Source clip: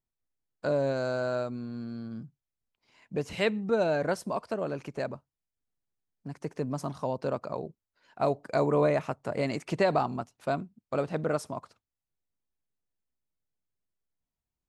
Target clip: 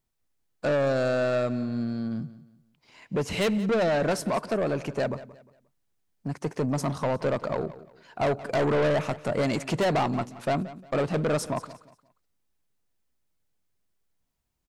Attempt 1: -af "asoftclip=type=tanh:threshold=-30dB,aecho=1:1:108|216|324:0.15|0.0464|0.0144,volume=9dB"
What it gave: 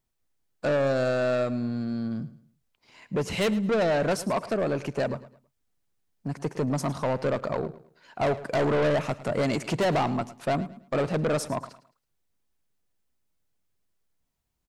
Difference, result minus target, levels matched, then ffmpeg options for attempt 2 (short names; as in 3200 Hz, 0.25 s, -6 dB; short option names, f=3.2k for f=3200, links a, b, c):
echo 69 ms early
-af "asoftclip=type=tanh:threshold=-30dB,aecho=1:1:177|354|531:0.15|0.0464|0.0144,volume=9dB"